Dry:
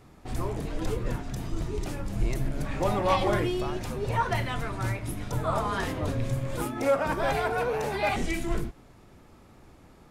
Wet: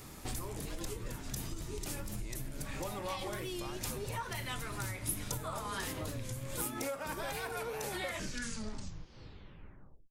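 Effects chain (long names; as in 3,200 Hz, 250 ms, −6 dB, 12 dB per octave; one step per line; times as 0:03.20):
turntable brake at the end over 2.31 s
downward compressor 12 to 1, threshold −39 dBFS, peak gain reduction 20 dB
first-order pre-emphasis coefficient 0.8
notch filter 700 Hz, Q 12
wow of a warped record 45 rpm, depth 100 cents
level +16 dB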